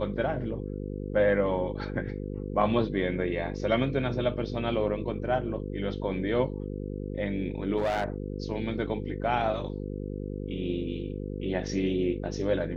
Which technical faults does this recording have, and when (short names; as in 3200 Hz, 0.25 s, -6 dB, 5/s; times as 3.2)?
buzz 50 Hz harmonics 10 -35 dBFS
7.78–8.04 clipped -23.5 dBFS